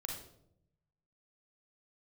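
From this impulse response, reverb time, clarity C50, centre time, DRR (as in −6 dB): 0.75 s, 3.0 dB, 37 ms, 0.0 dB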